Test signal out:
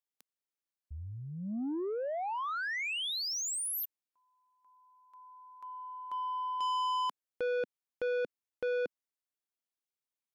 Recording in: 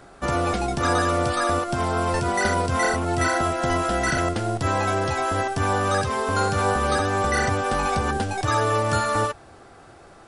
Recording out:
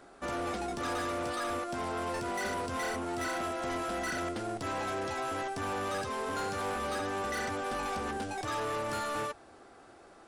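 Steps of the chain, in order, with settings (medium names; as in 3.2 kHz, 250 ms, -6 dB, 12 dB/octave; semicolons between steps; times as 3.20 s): resonant low shelf 190 Hz -6.5 dB, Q 1.5; saturation -23 dBFS; trim -7.5 dB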